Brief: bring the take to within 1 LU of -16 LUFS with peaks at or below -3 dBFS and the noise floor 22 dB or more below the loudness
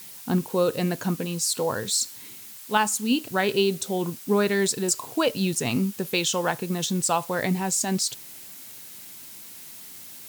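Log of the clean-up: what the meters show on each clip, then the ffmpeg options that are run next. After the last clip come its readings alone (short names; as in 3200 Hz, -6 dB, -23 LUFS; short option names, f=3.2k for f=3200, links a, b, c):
noise floor -43 dBFS; noise floor target -47 dBFS; loudness -25.0 LUFS; peak -9.0 dBFS; loudness target -16.0 LUFS
-> -af "afftdn=nr=6:nf=-43"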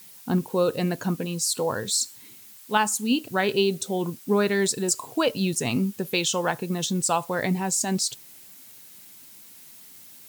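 noise floor -48 dBFS; loudness -25.0 LUFS; peak -9.5 dBFS; loudness target -16.0 LUFS
-> -af "volume=9dB,alimiter=limit=-3dB:level=0:latency=1"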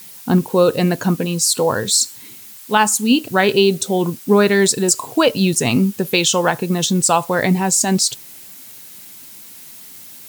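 loudness -16.0 LUFS; peak -3.0 dBFS; noise floor -39 dBFS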